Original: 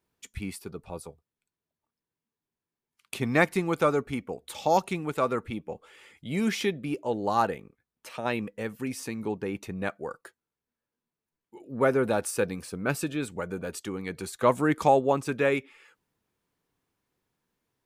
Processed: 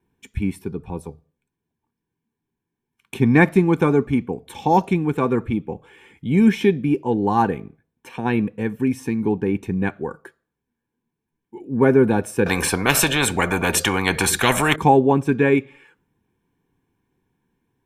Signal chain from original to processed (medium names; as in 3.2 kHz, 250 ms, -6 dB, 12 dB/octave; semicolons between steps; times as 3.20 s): reverberation RT60 0.45 s, pre-delay 3 ms, DRR 20 dB; 12.46–14.76 s: spectrum-flattening compressor 4:1; trim -2 dB